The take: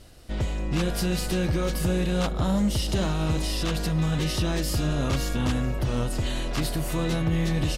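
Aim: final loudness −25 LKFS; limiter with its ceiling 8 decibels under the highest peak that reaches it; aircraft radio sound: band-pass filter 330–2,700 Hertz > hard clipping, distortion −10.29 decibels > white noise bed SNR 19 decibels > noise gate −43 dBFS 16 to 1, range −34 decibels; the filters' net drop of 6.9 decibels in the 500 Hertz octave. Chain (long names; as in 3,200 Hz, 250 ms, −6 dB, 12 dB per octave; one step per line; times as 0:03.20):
parametric band 500 Hz −7.5 dB
brickwall limiter −24.5 dBFS
band-pass filter 330–2,700 Hz
hard clipping −39 dBFS
white noise bed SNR 19 dB
noise gate −43 dBFS 16 to 1, range −34 dB
level +18 dB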